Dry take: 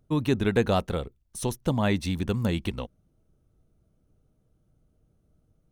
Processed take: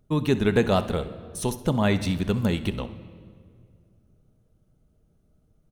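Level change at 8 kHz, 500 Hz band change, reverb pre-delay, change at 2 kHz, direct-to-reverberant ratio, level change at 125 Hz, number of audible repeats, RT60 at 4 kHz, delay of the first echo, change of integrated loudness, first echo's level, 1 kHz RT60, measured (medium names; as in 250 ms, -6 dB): +2.0 dB, +3.0 dB, 5 ms, +2.5 dB, 10.0 dB, +2.0 dB, 1, 1.5 s, 66 ms, +2.5 dB, -18.0 dB, 1.8 s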